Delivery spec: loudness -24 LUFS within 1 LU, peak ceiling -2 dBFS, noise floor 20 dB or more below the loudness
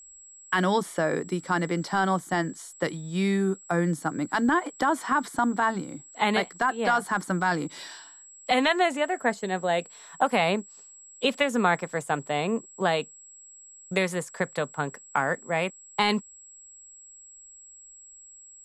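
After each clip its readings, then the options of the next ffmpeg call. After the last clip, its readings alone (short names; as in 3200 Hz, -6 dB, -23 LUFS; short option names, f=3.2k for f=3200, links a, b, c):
steady tone 7700 Hz; tone level -47 dBFS; loudness -26.5 LUFS; peak -9.5 dBFS; loudness target -24.0 LUFS
-> -af "bandreject=f=7.7k:w=30"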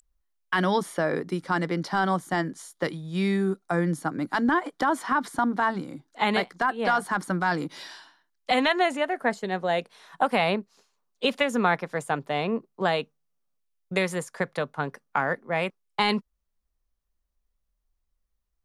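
steady tone none; loudness -26.5 LUFS; peak -9.5 dBFS; loudness target -24.0 LUFS
-> -af "volume=2.5dB"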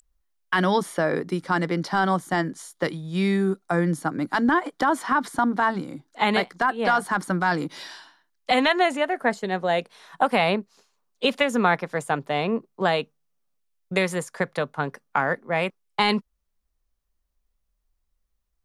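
loudness -24.0 LUFS; peak -7.0 dBFS; noise floor -75 dBFS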